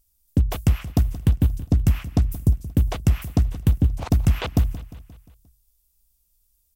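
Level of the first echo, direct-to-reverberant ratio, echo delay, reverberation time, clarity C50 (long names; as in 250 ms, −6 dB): −16.5 dB, no reverb audible, 176 ms, no reverb audible, no reverb audible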